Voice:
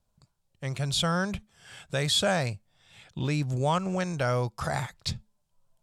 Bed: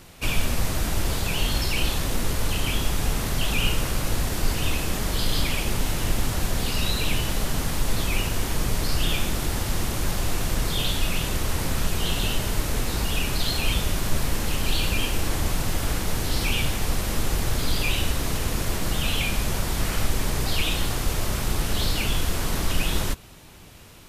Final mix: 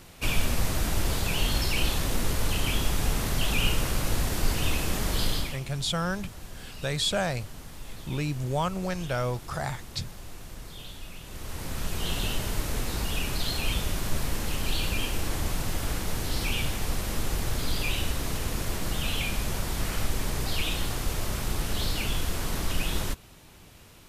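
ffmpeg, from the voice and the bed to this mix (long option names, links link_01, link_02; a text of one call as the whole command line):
ffmpeg -i stem1.wav -i stem2.wav -filter_complex "[0:a]adelay=4900,volume=-2dB[link_01];[1:a]volume=11dB,afade=type=out:start_time=5.24:duration=0.36:silence=0.16788,afade=type=in:start_time=11.24:duration=0.89:silence=0.223872[link_02];[link_01][link_02]amix=inputs=2:normalize=0" out.wav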